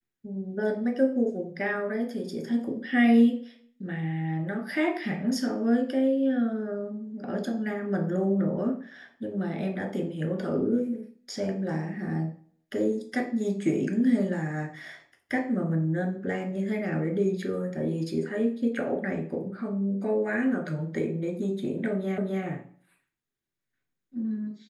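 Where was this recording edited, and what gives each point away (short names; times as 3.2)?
22.18 repeat of the last 0.26 s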